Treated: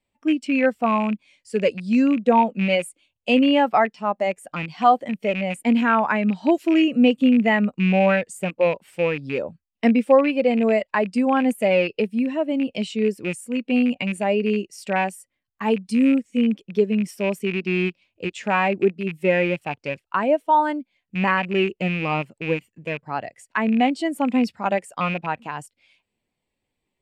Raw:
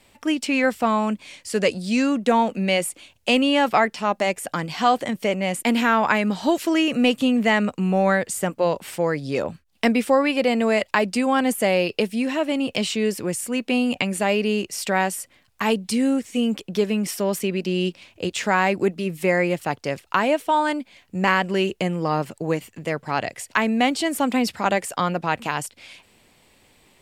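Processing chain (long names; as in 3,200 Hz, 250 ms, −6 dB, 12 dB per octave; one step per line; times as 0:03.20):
loose part that buzzes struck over −28 dBFS, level −13 dBFS
every bin expanded away from the loudest bin 1.5 to 1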